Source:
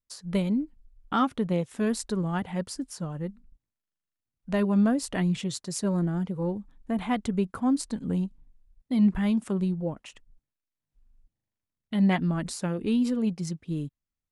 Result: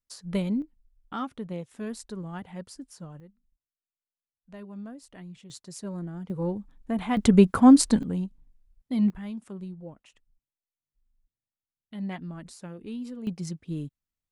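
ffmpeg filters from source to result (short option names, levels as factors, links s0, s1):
-af "asetnsamples=n=441:p=0,asendcmd='0.62 volume volume -8.5dB;3.2 volume volume -18dB;5.5 volume volume -9dB;6.3 volume volume 0dB;7.17 volume volume 10.5dB;8.03 volume volume -2dB;9.1 volume volume -11.5dB;13.27 volume volume -2dB',volume=0.841"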